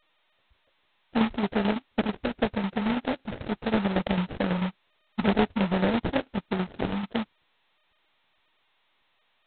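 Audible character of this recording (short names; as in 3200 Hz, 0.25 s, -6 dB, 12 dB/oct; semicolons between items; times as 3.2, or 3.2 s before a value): aliases and images of a low sample rate 1100 Hz, jitter 20%; tremolo saw down 9.1 Hz, depth 60%; G.726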